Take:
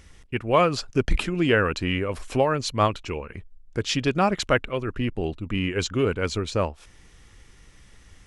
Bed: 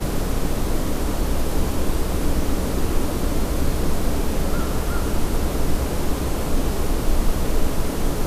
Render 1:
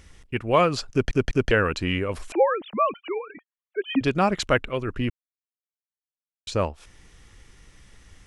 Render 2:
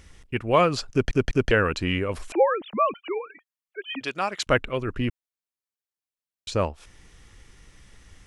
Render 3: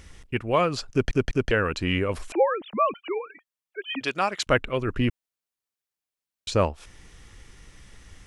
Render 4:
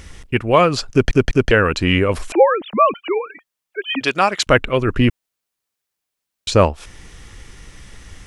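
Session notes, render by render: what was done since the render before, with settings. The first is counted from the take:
0:00.91: stutter in place 0.20 s, 3 plays; 0:02.32–0:04.01: three sine waves on the formant tracks; 0:05.10–0:06.47: silence
0:03.26–0:04.47: high-pass filter 1,200 Hz 6 dB per octave
speech leveller within 4 dB 0.5 s
level +9 dB; brickwall limiter −1 dBFS, peak gain reduction 1.5 dB

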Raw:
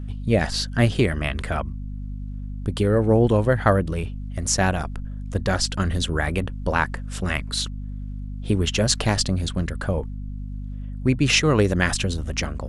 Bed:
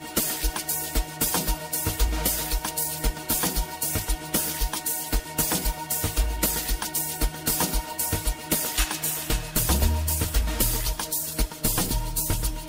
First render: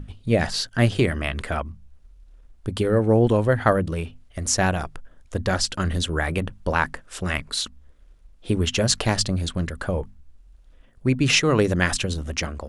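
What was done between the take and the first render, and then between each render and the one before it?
mains-hum notches 50/100/150/200/250 Hz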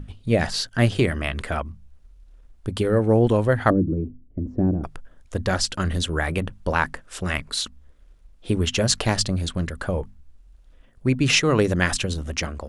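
0:03.70–0:04.84: low-pass with resonance 300 Hz, resonance Q 3.6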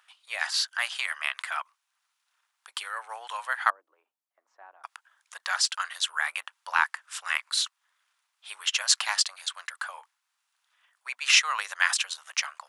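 Butterworth high-pass 930 Hz 36 dB per octave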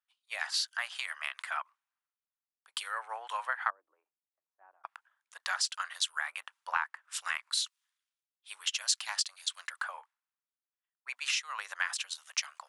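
downward compressor 10 to 1, threshold −32 dBFS, peak gain reduction 17.5 dB
multiband upward and downward expander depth 100%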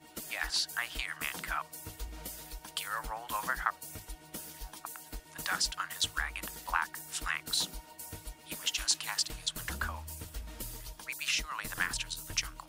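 mix in bed −18.5 dB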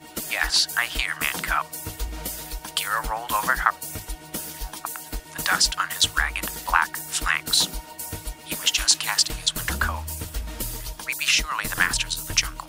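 level +11.5 dB
brickwall limiter −2 dBFS, peak gain reduction 1 dB

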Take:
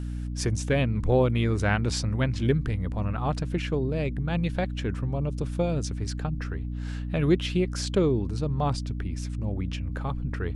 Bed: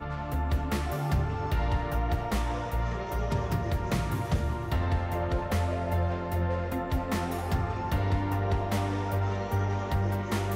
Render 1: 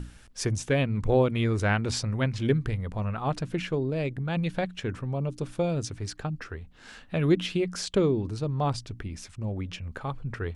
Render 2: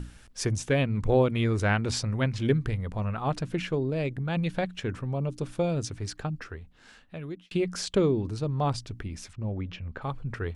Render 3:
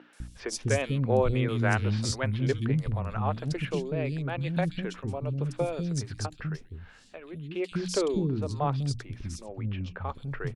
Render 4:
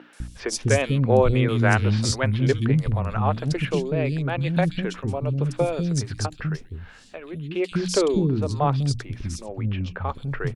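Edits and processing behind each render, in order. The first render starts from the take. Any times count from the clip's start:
mains-hum notches 60/120/180/240/300 Hz
0:06.28–0:07.51: fade out; 0:09.33–0:10.02: high-frequency loss of the air 170 metres
three-band delay without the direct sound mids, highs, lows 130/200 ms, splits 320/3,300 Hz
level +6.5 dB

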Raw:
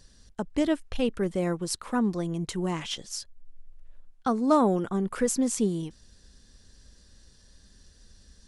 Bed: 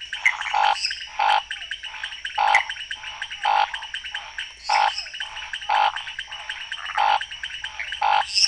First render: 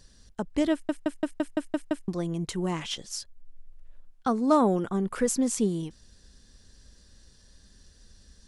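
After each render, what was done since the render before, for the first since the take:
0:00.72: stutter in place 0.17 s, 8 plays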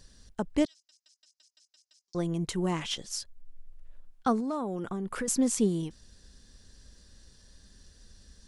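0:00.65–0:02.15: flat-topped band-pass 5,400 Hz, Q 2.7
0:04.40–0:05.28: downward compressor 5 to 1, threshold −30 dBFS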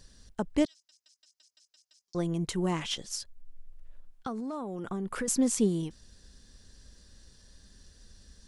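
0:03.15–0:04.86: downward compressor, threshold −32 dBFS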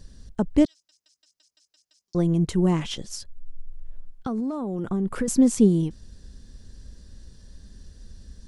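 low-shelf EQ 480 Hz +11.5 dB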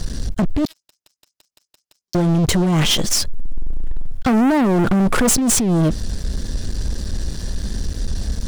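compressor whose output falls as the input rises −26 dBFS, ratio −1
leveller curve on the samples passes 5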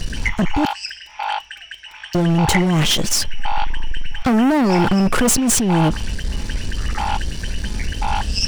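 mix in bed −4 dB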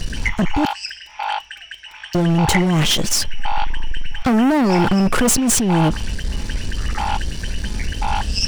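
no processing that can be heard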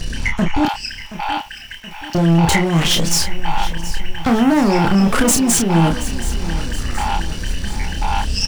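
double-tracking delay 30 ms −5 dB
feedback echo at a low word length 725 ms, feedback 55%, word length 6 bits, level −14 dB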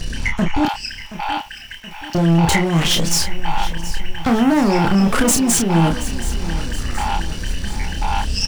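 level −1 dB

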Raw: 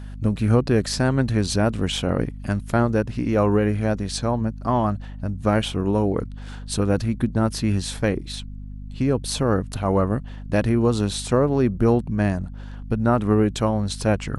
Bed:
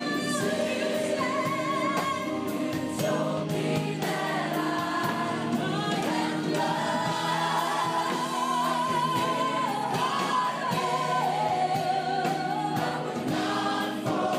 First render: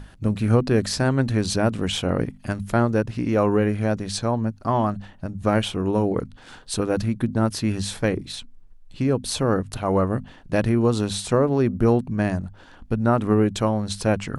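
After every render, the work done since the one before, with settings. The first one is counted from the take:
mains-hum notches 50/100/150/200/250 Hz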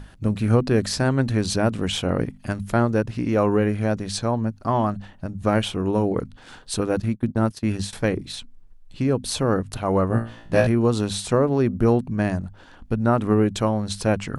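0:07.00–0:07.93: noise gate −29 dBFS, range −19 dB
0:10.08–0:10.67: flutter between parallel walls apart 3 metres, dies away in 0.37 s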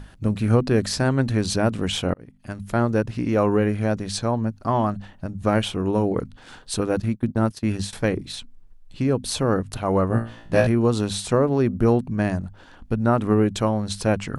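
0:02.14–0:02.91: fade in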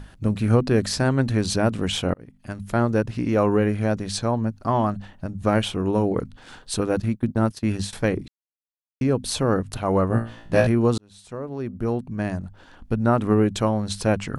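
0:08.28–0:09.01: silence
0:10.98–0:12.94: fade in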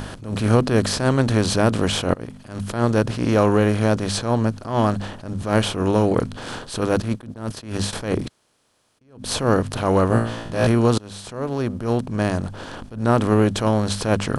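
compressor on every frequency bin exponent 0.6
level that may rise only so fast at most 120 dB per second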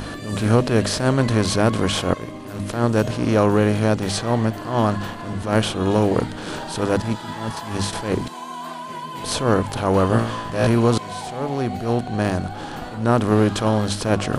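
mix in bed −6 dB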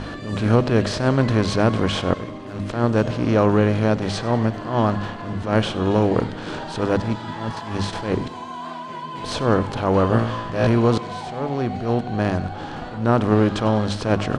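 high-frequency loss of the air 100 metres
repeating echo 97 ms, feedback 56%, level −18 dB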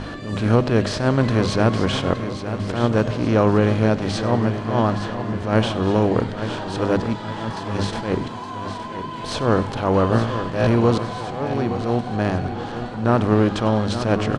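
repeating echo 868 ms, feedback 47%, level −10.5 dB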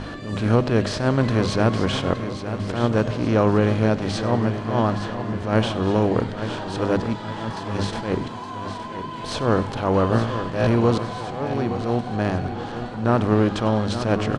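level −1.5 dB

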